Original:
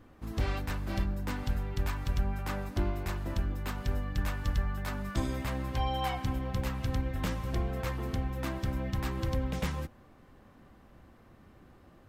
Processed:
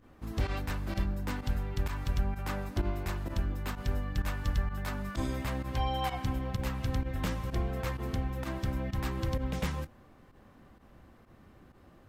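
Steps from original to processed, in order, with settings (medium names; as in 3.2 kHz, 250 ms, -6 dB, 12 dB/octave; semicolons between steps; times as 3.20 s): volume shaper 128 bpm, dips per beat 1, -13 dB, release 69 ms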